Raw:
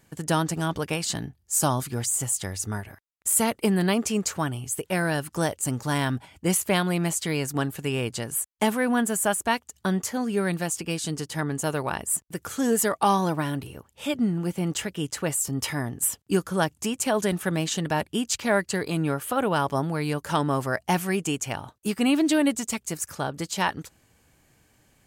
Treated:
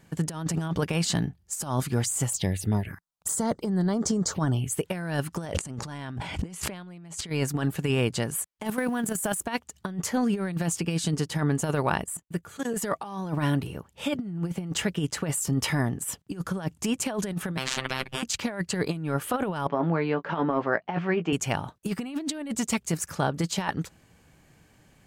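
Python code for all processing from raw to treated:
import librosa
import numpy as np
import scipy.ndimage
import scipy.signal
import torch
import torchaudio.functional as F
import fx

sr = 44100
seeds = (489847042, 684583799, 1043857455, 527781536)

y = fx.chain(x, sr, fx.env_phaser(low_hz=290.0, high_hz=2600.0, full_db=-23.0),
    fx.over_compress(threshold_db=-28.0, ratio=-1.0), at=(2.31, 4.7))
y = fx.chain(y, sr, fx.lowpass(hz=8900.0, slope=12),
    fx.env_flatten(amount_pct=100), at=(5.46, 7.3))
y = fx.chain(y, sr, fx.law_mismatch(coded='mu'),
    fx.high_shelf(hz=8400.0, db=11.0),
    fx.level_steps(step_db=12), at=(8.65, 9.47))
y = fx.chain(y, sr, fx.notch(hz=5400.0, q=7.1),
    fx.notch_comb(f0_hz=260.0),
    fx.level_steps(step_db=16), at=(12.04, 12.74))
y = fx.chain(y, sr, fx.bass_treble(bass_db=14, treble_db=-15),
    fx.robotise(hz=131.0),
    fx.spectral_comp(ratio=10.0), at=(17.57, 18.23))
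y = fx.chain(y, sr, fx.bandpass_edges(low_hz=250.0, high_hz=3100.0),
    fx.air_absorb(metres=170.0),
    fx.doubler(ms=18.0, db=-9.5), at=(19.67, 21.33))
y = fx.peak_eq(y, sr, hz=170.0, db=6.0, octaves=0.38)
y = fx.over_compress(y, sr, threshold_db=-26.0, ratio=-0.5)
y = fx.high_shelf(y, sr, hz=6500.0, db=-8.0)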